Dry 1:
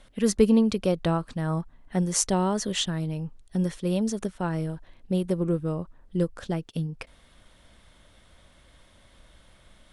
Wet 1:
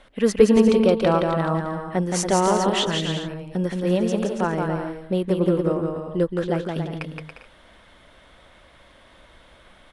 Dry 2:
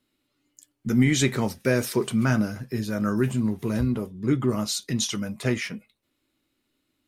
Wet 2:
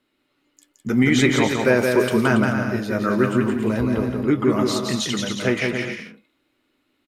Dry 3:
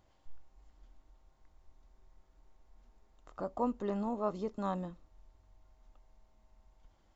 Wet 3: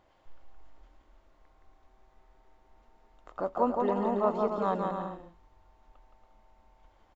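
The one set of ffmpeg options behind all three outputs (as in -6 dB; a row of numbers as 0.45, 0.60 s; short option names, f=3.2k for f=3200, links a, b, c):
-af "bass=f=250:g=-9,treble=f=4k:g=-11,aecho=1:1:170|280.5|352.3|399|429.4:0.631|0.398|0.251|0.158|0.1,volume=7dB"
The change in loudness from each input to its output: +5.0, +5.0, +7.0 LU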